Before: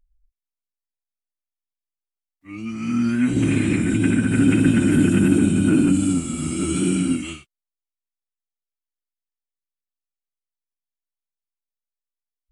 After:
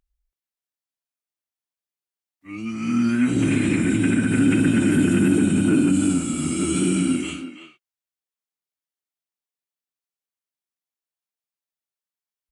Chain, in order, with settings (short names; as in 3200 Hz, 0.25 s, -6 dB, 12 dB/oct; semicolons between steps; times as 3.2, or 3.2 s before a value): HPF 120 Hz 6 dB/oct; speakerphone echo 0.33 s, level -9 dB; in parallel at +1 dB: limiter -14 dBFS, peak gain reduction 8 dB; on the sum: gain -5 dB